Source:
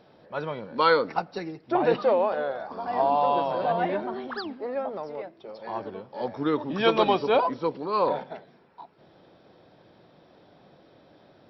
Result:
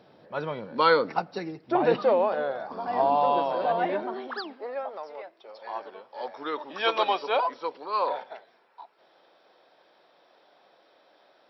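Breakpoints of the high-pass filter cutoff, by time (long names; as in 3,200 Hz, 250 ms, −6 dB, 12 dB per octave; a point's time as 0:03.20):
0:03.12 85 Hz
0:03.52 240 Hz
0:04.04 240 Hz
0:04.88 640 Hz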